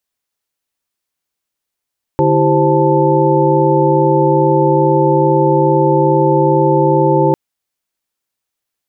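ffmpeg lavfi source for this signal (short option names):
-f lavfi -i "aevalsrc='0.178*(sin(2*PI*146.83*t)+sin(2*PI*329.63*t)+sin(2*PI*392*t)+sin(2*PI*523.25*t)+sin(2*PI*880*t))':d=5.15:s=44100"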